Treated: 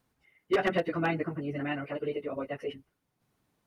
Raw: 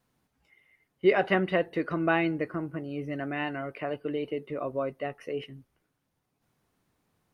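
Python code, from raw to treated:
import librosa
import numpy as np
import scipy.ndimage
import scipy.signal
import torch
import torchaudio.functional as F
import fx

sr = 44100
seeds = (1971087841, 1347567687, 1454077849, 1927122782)

y = fx.stretch_vocoder_free(x, sr, factor=0.5)
y = 10.0 ** (-19.5 / 20.0) * (np.abs((y / 10.0 ** (-19.5 / 20.0) + 3.0) % 4.0 - 2.0) - 1.0)
y = y * librosa.db_to_amplitude(2.0)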